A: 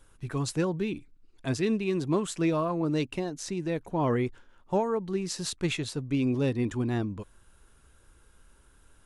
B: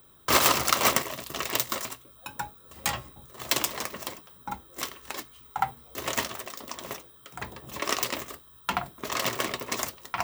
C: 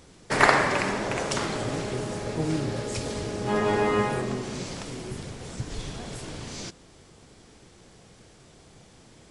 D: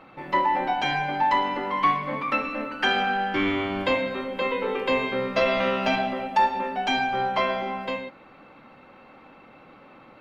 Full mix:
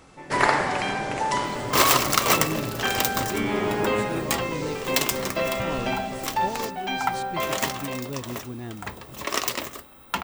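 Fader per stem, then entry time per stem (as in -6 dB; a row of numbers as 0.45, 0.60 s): -7.0, +2.0, -2.5, -4.5 dB; 1.70, 1.45, 0.00, 0.00 s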